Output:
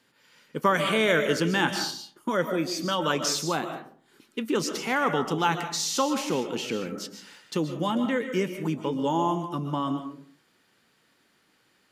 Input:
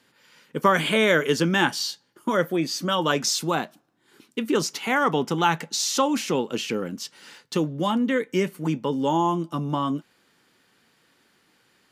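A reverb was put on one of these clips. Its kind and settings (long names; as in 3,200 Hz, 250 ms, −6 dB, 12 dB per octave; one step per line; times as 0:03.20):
comb and all-pass reverb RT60 0.52 s, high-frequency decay 0.45×, pre-delay 95 ms, DRR 7 dB
level −3.5 dB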